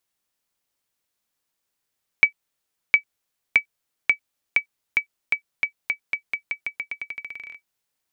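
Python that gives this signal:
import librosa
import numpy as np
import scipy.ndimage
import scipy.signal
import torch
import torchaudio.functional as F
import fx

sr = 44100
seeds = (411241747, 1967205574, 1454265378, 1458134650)

y = fx.bouncing_ball(sr, first_gap_s=0.71, ratio=0.87, hz=2290.0, decay_ms=96.0, level_db=-3.0)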